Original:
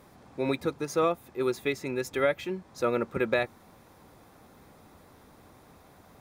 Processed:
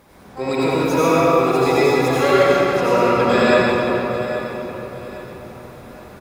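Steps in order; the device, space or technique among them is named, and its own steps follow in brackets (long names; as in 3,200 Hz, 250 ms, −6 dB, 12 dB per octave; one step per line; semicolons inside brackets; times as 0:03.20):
shimmer-style reverb (pitch-shifted copies added +12 semitones −8 dB; convolution reverb RT60 4.0 s, pre-delay 76 ms, DRR −9 dB)
repeating echo 818 ms, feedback 36%, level −14.5 dB
level +3 dB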